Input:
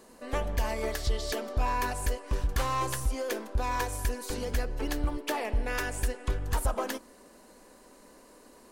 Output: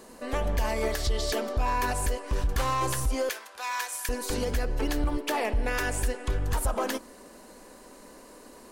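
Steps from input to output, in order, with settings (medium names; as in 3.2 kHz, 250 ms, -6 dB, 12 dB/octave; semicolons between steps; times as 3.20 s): 3.29–4.09 s: high-pass 1.3 kHz 12 dB/octave; peak limiter -24 dBFS, peak gain reduction 5.5 dB; trim +5.5 dB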